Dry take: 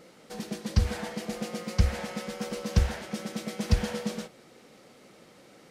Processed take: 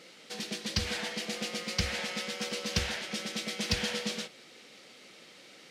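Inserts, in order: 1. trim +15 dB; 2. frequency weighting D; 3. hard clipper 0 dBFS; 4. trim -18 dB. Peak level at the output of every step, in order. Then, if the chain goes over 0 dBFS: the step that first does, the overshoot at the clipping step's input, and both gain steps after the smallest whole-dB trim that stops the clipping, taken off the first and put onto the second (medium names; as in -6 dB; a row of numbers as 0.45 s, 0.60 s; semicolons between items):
+6.5 dBFS, +4.0 dBFS, 0.0 dBFS, -18.0 dBFS; step 1, 4.0 dB; step 1 +11 dB, step 4 -14 dB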